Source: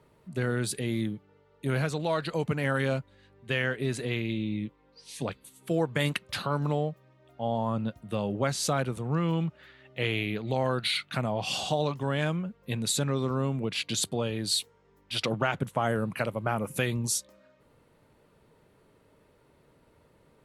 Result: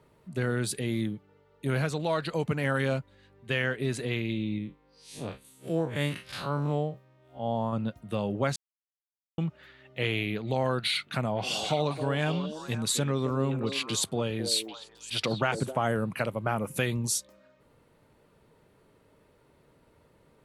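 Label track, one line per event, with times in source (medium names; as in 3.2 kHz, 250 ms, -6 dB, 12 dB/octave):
4.580000	7.730000	spectral blur width 89 ms
8.560000	9.380000	mute
10.800000	15.770000	repeats whose band climbs or falls 265 ms, band-pass from 400 Hz, each repeat 1.4 oct, level -4.5 dB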